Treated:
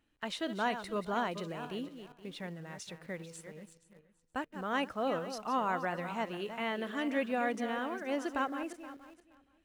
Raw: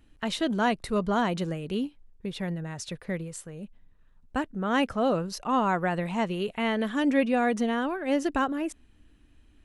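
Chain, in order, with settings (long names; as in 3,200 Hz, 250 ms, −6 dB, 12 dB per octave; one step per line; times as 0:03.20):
feedback delay that plays each chunk backwards 236 ms, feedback 42%, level −10 dB
low-pass filter 1,200 Hz 6 dB per octave
spectral tilt +3.5 dB per octave
in parallel at −11.5 dB: bit reduction 8 bits
on the sum: level −6 dB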